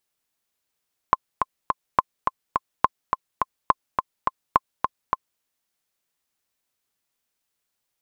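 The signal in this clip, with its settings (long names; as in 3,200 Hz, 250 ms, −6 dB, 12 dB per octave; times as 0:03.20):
click track 210 BPM, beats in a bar 3, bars 5, 1,050 Hz, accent 5 dB −2 dBFS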